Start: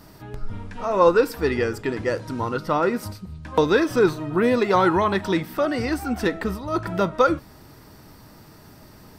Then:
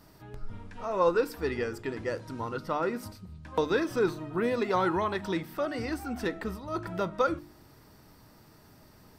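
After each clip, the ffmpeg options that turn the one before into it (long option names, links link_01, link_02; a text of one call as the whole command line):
ffmpeg -i in.wav -af "bandreject=frequency=49.68:width_type=h:width=4,bandreject=frequency=99.36:width_type=h:width=4,bandreject=frequency=149.04:width_type=h:width=4,bandreject=frequency=198.72:width_type=h:width=4,bandreject=frequency=248.4:width_type=h:width=4,bandreject=frequency=298.08:width_type=h:width=4,bandreject=frequency=347.76:width_type=h:width=4,volume=-8.5dB" out.wav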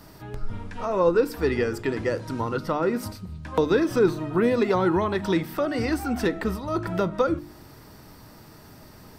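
ffmpeg -i in.wav -filter_complex "[0:a]acrossover=split=470[link_01][link_02];[link_02]acompressor=threshold=-37dB:ratio=2.5[link_03];[link_01][link_03]amix=inputs=2:normalize=0,volume=8.5dB" out.wav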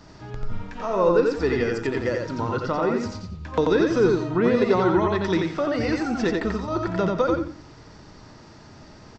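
ffmpeg -i in.wav -af "aecho=1:1:88|176|264:0.708|0.17|0.0408,aresample=16000,aresample=44100" out.wav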